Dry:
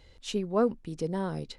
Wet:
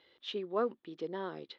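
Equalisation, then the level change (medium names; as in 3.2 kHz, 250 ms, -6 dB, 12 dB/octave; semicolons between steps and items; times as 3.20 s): cabinet simulation 320–4200 Hz, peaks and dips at 350 Hz +7 dB, 1.2 kHz +5 dB, 1.8 kHz +5 dB, 3.4 kHz +9 dB; -6.5 dB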